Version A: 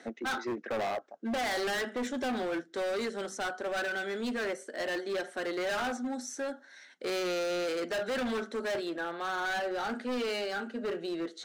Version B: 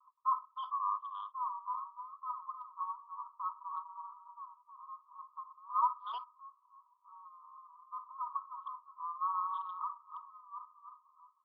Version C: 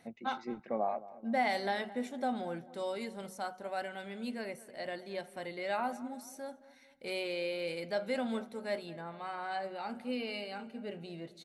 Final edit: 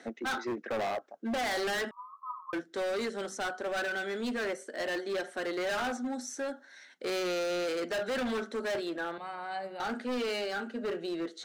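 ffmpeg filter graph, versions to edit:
-filter_complex "[0:a]asplit=3[a][b][c];[a]atrim=end=1.912[d];[1:a]atrim=start=1.908:end=2.532[e];[b]atrim=start=2.528:end=9.182[f];[2:a]atrim=start=9.178:end=9.802[g];[c]atrim=start=9.798[h];[d][e]acrossfade=d=0.004:c1=hsin:c2=hsin[i];[i][f]acrossfade=d=0.004:c1=hsin:c2=hsin[j];[j][g]acrossfade=d=0.004:c1=hsin:c2=hsin[k];[k][h]acrossfade=d=0.004:c1=hsin:c2=hsin"

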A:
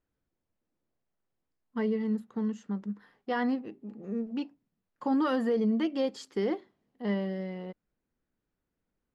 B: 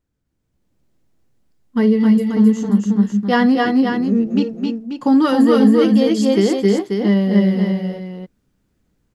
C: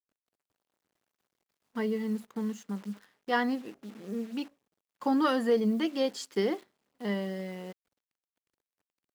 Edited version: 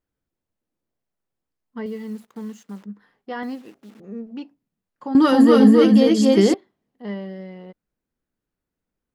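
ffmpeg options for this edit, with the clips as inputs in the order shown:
-filter_complex "[2:a]asplit=2[a][b];[0:a]asplit=4[c][d][e][f];[c]atrim=end=1.862[g];[a]atrim=start=1.858:end=2.842[h];[d]atrim=start=2.838:end=3.432[i];[b]atrim=start=3.428:end=4.002[j];[e]atrim=start=3.998:end=5.152[k];[1:a]atrim=start=5.148:end=6.542[l];[f]atrim=start=6.538[m];[g][h]acrossfade=d=0.004:c1=hsin:c2=hsin[n];[n][i]acrossfade=d=0.004:c1=hsin:c2=hsin[o];[o][j]acrossfade=d=0.004:c1=hsin:c2=hsin[p];[p][k]acrossfade=d=0.004:c1=hsin:c2=hsin[q];[q][l]acrossfade=d=0.004:c1=hsin:c2=hsin[r];[r][m]acrossfade=d=0.004:c1=hsin:c2=hsin"

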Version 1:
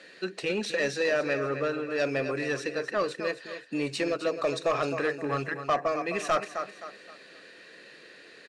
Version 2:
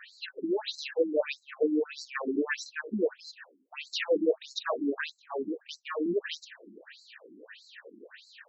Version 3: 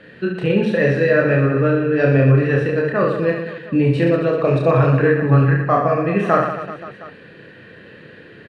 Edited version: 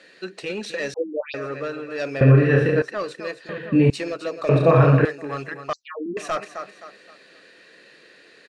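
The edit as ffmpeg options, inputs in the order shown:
-filter_complex "[1:a]asplit=2[a][b];[2:a]asplit=3[c][d][e];[0:a]asplit=6[f][g][h][i][j][k];[f]atrim=end=0.942[l];[a]atrim=start=0.938:end=1.342[m];[g]atrim=start=1.338:end=2.212[n];[c]atrim=start=2.208:end=2.822[o];[h]atrim=start=2.818:end=3.492[p];[d]atrim=start=3.488:end=3.902[q];[i]atrim=start=3.898:end=4.492[r];[e]atrim=start=4.488:end=5.052[s];[j]atrim=start=5.048:end=5.732[t];[b]atrim=start=5.728:end=6.172[u];[k]atrim=start=6.168[v];[l][m]acrossfade=d=0.004:c1=hsin:c2=hsin[w];[w][n]acrossfade=d=0.004:c1=hsin:c2=hsin[x];[x][o]acrossfade=d=0.004:c1=hsin:c2=hsin[y];[y][p]acrossfade=d=0.004:c1=hsin:c2=hsin[z];[z][q]acrossfade=d=0.004:c1=hsin:c2=hsin[aa];[aa][r]acrossfade=d=0.004:c1=hsin:c2=hsin[ab];[ab][s]acrossfade=d=0.004:c1=hsin:c2=hsin[ac];[ac][t]acrossfade=d=0.004:c1=hsin:c2=hsin[ad];[ad][u]acrossfade=d=0.004:c1=hsin:c2=hsin[ae];[ae][v]acrossfade=d=0.004:c1=hsin:c2=hsin"

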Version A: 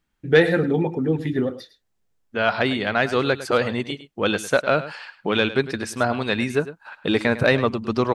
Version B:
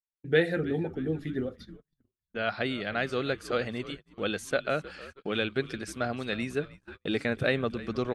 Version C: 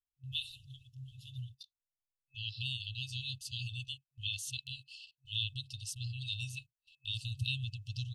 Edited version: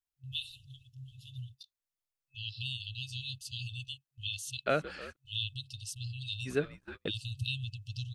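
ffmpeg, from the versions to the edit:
-filter_complex "[1:a]asplit=2[a][b];[2:a]asplit=3[c][d][e];[c]atrim=end=4.662[f];[a]atrim=start=4.658:end=5.162[g];[d]atrim=start=5.158:end=6.49[h];[b]atrim=start=6.45:end=7.11[i];[e]atrim=start=7.07[j];[f][g]acrossfade=d=0.004:c1=hsin:c2=hsin[k];[k][h]acrossfade=d=0.004:c1=hsin:c2=hsin[l];[l][i]acrossfade=d=0.04:c1=tri:c2=tri[m];[m][j]acrossfade=d=0.04:c1=tri:c2=tri"

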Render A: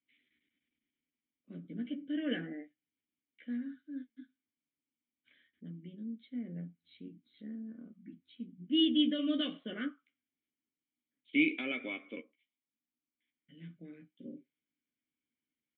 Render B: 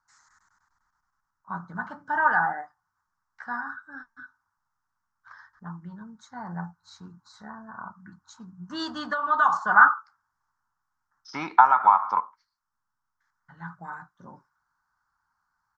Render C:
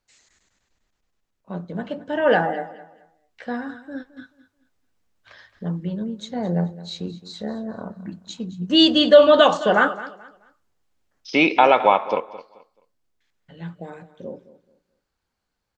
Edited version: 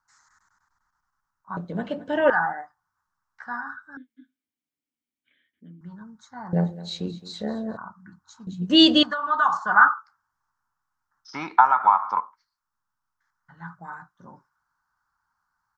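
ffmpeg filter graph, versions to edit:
-filter_complex "[2:a]asplit=3[a][b][c];[1:a]asplit=5[d][e][f][g][h];[d]atrim=end=1.572[i];[a]atrim=start=1.568:end=2.302[j];[e]atrim=start=2.298:end=3.972[k];[0:a]atrim=start=3.968:end=5.812[l];[f]atrim=start=5.808:end=6.532[m];[b]atrim=start=6.528:end=7.772[n];[g]atrim=start=7.768:end=8.472[o];[c]atrim=start=8.468:end=9.032[p];[h]atrim=start=9.028[q];[i][j]acrossfade=d=0.004:c1=hsin:c2=hsin[r];[r][k]acrossfade=d=0.004:c1=hsin:c2=hsin[s];[s][l]acrossfade=d=0.004:c1=hsin:c2=hsin[t];[t][m]acrossfade=d=0.004:c1=hsin:c2=hsin[u];[u][n]acrossfade=d=0.004:c1=hsin:c2=hsin[v];[v][o]acrossfade=d=0.004:c1=hsin:c2=hsin[w];[w][p]acrossfade=d=0.004:c1=hsin:c2=hsin[x];[x][q]acrossfade=d=0.004:c1=hsin:c2=hsin"

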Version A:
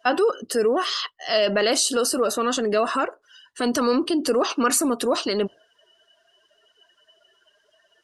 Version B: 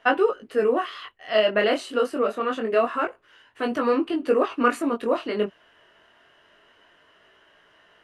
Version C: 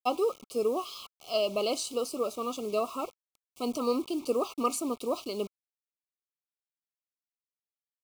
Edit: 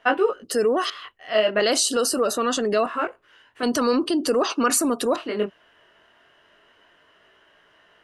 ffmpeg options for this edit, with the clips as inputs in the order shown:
-filter_complex "[0:a]asplit=3[a][b][c];[1:a]asplit=4[d][e][f][g];[d]atrim=end=0.442[h];[a]atrim=start=0.438:end=0.902[i];[e]atrim=start=0.898:end=1.602[j];[b]atrim=start=1.598:end=2.862[k];[f]atrim=start=2.858:end=3.632[l];[c]atrim=start=3.628:end=5.162[m];[g]atrim=start=5.158[n];[h][i]acrossfade=d=0.004:c1=hsin:c2=hsin[o];[o][j]acrossfade=d=0.004:c1=hsin:c2=hsin[p];[p][k]acrossfade=d=0.004:c1=hsin:c2=hsin[q];[q][l]acrossfade=d=0.004:c1=hsin:c2=hsin[r];[r][m]acrossfade=d=0.004:c1=hsin:c2=hsin[s];[s][n]acrossfade=d=0.004:c1=hsin:c2=hsin"

